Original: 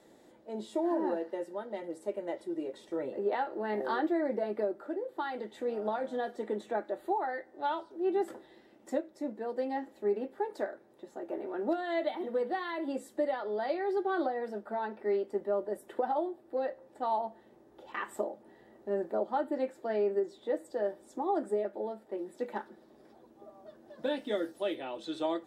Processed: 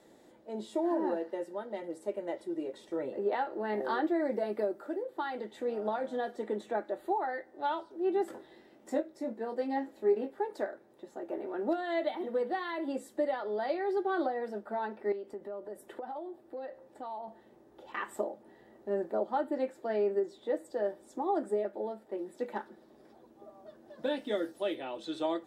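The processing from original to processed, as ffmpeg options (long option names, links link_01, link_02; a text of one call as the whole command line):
ffmpeg -i in.wav -filter_complex "[0:a]asettb=1/sr,asplit=3[link_01][link_02][link_03];[link_01]atrim=end=4.204[link_04];[link_02]atrim=start=4.2:end=5.03,asetpts=PTS-STARTPTS,afade=type=in:duration=0.004:curve=qsin,afade=type=out:start_time=0.826:duration=0.004:curve=qsin,highshelf=frequency=5600:gain=9.5[link_05];[link_03]atrim=start=5.026[link_06];[link_04][link_05]acrossfade=duration=0.004:curve1=hsin:curve2=qsin[link_07];[link_07][link_06]acrossfade=duration=0.004:curve1=qsin:curve2=hsin,asettb=1/sr,asplit=3[link_08][link_09][link_10];[link_08]atrim=end=8.314[link_11];[link_09]atrim=start=8.31:end=10.33,asetpts=PTS-STARTPTS,afade=type=in:duration=0.004:curve=qsin,afade=type=out:start_time=2.016:duration=0.004:curve=qsin,asplit=2[link_12][link_13];[link_13]adelay=22,volume=-5.5dB[link_14];[link_12][link_14]amix=inputs=2:normalize=0,atrim=end_sample=89082[link_15];[link_10]atrim=start=10.326[link_16];[link_11][link_15]acrossfade=duration=0.004:curve1=hsin:curve2=qsin[link_17];[link_17][link_16]acrossfade=duration=0.004:curve1=qsin:curve2=hsin,asettb=1/sr,asplit=3[link_18][link_19][link_20];[link_18]atrim=end=15.124[link_21];[link_19]atrim=start=15.12:end=17.28,asetpts=PTS-STARTPTS,afade=type=in:duration=0.004:curve=qsin,afade=type=out:start_time=2.156:duration=0.004:curve=qsin,acompressor=threshold=-40dB:ratio=3:attack=3.2:release=140:knee=1:detection=peak[link_22];[link_20]atrim=start=17.276[link_23];[link_21][link_22]acrossfade=duration=0.004:curve1=hsin:curve2=qsin[link_24];[link_24][link_23]acrossfade=duration=0.004:curve1=qsin:curve2=hsin" out.wav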